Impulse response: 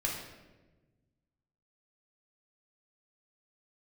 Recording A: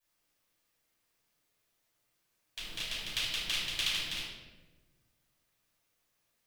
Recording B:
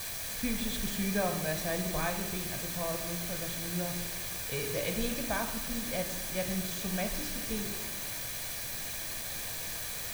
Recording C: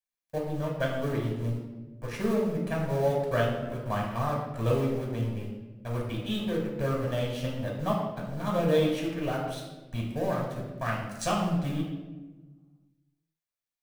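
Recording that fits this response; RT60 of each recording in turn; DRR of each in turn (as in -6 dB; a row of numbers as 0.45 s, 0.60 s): C; 1.2 s, 1.2 s, 1.2 s; -11.0 dB, 5.5 dB, -2.5 dB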